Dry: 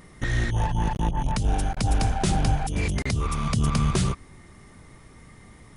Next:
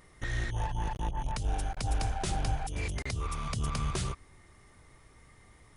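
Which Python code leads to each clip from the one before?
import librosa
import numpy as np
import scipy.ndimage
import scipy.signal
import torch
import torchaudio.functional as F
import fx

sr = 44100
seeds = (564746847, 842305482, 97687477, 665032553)

y = fx.peak_eq(x, sr, hz=200.0, db=-8.5, octaves=1.2)
y = y * librosa.db_to_amplitude(-7.0)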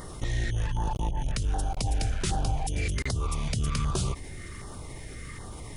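y = fx.filter_lfo_notch(x, sr, shape='saw_down', hz=1.3, low_hz=650.0, high_hz=2500.0, q=0.89)
y = fx.env_flatten(y, sr, amount_pct=50)
y = y * librosa.db_to_amplitude(2.0)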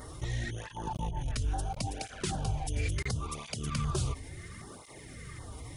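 y = fx.flanger_cancel(x, sr, hz=0.72, depth_ms=6.0)
y = y * librosa.db_to_amplitude(-1.0)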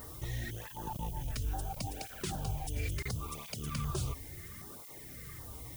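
y = fx.dmg_noise_colour(x, sr, seeds[0], colour='violet', level_db=-47.0)
y = y * librosa.db_to_amplitude(-4.0)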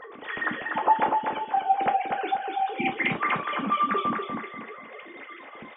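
y = fx.sine_speech(x, sr)
y = fx.echo_feedback(y, sr, ms=244, feedback_pct=34, wet_db=-4.0)
y = fx.rev_gated(y, sr, seeds[1], gate_ms=90, shape='falling', drr_db=4.5)
y = y * librosa.db_to_amplitude(8.0)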